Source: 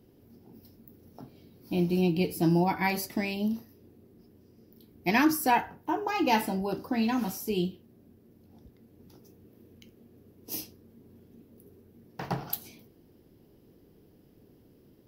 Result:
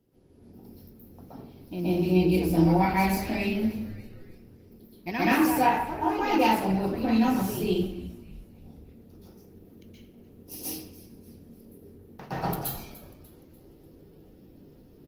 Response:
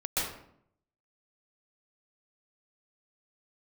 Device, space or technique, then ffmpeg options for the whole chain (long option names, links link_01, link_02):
speakerphone in a meeting room: -filter_complex "[0:a]asettb=1/sr,asplit=3[link_01][link_02][link_03];[link_01]atrim=end=5.084[link_04];[link_02]atrim=start=5.08:end=6.53,asetpts=PTS-STARTPTS,afade=type=in:duration=0.004:curve=qsin,afade=type=out:start_time=1.446:duration=0.004:curve=qsin,adynamicequalizer=threshold=0.00398:dfrequency=2800:dqfactor=7.7:tfrequency=2800:tqfactor=7.7:attack=5:release=100:ratio=0.375:range=1.5:mode=boostabove:tftype=bell[link_05];[link_03]atrim=start=6.526[link_06];[link_04][link_05]acrossfade=duration=0.004:curve1=hsin:curve2=qsin[link_07];[link_07][link_06]acrossfade=duration=0.004:curve1=qsin:curve2=hsin,asplit=5[link_08][link_09][link_10][link_11][link_12];[link_09]adelay=296,afreqshift=-110,volume=-19dB[link_13];[link_10]adelay=592,afreqshift=-220,volume=-25.9dB[link_14];[link_11]adelay=888,afreqshift=-330,volume=-32.9dB[link_15];[link_12]adelay=1184,afreqshift=-440,volume=-39.8dB[link_16];[link_08][link_13][link_14][link_15][link_16]amix=inputs=5:normalize=0[link_17];[1:a]atrim=start_sample=2205[link_18];[link_17][link_18]afir=irnorm=-1:irlink=0,asplit=2[link_19][link_20];[link_20]adelay=200,highpass=300,lowpass=3400,asoftclip=type=hard:threshold=-13dB,volume=-19dB[link_21];[link_19][link_21]amix=inputs=2:normalize=0,dynaudnorm=framelen=250:gausssize=3:maxgain=4.5dB,volume=-7.5dB" -ar 48000 -c:a libopus -b:a 20k